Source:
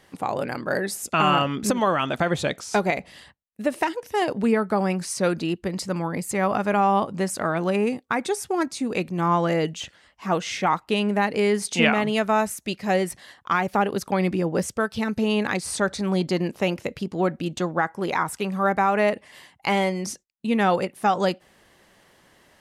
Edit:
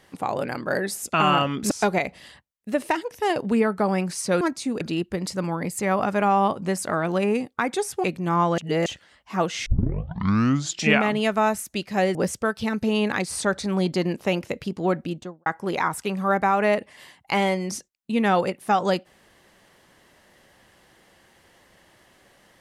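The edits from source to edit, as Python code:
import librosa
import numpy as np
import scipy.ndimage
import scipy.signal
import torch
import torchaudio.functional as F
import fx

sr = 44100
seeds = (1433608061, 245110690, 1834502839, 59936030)

y = fx.studio_fade_out(x, sr, start_s=17.33, length_s=0.48)
y = fx.edit(y, sr, fx.cut(start_s=1.71, length_s=0.92),
    fx.move(start_s=8.56, length_s=0.4, to_s=5.33),
    fx.reverse_span(start_s=9.5, length_s=0.28),
    fx.tape_start(start_s=10.58, length_s=1.33),
    fx.cut(start_s=13.07, length_s=1.43), tone=tone)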